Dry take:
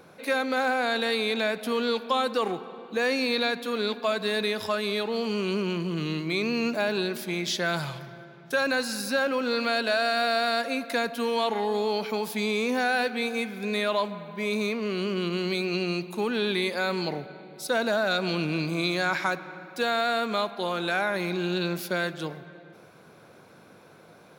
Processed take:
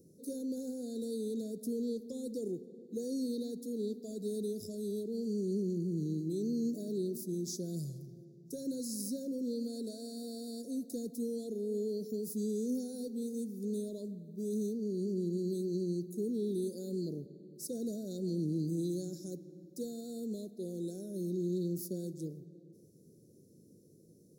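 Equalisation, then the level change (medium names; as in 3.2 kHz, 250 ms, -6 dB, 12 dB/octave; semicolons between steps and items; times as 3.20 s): inverse Chebyshev band-stop 830–3000 Hz, stop band 50 dB; -4.5 dB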